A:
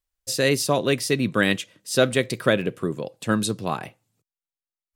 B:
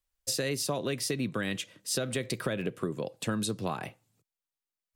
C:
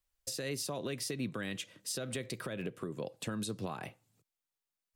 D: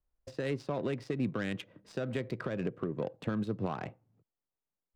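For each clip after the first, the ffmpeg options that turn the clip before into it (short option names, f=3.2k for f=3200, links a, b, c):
-filter_complex "[0:a]acrossover=split=160[a][b];[b]alimiter=limit=-13.5dB:level=0:latency=1:release=66[c];[a][c]amix=inputs=2:normalize=0,acompressor=threshold=-28dB:ratio=6"
-af "alimiter=level_in=3dB:limit=-24dB:level=0:latency=1:release=378,volume=-3dB"
-af "adynamicsmooth=sensitivity=5:basefreq=950,volume=5dB"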